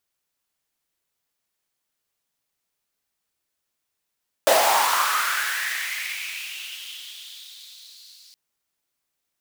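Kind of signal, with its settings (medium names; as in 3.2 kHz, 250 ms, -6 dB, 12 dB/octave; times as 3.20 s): swept filtered noise pink, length 3.87 s highpass, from 560 Hz, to 4.5 kHz, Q 5, linear, gain ramp -32.5 dB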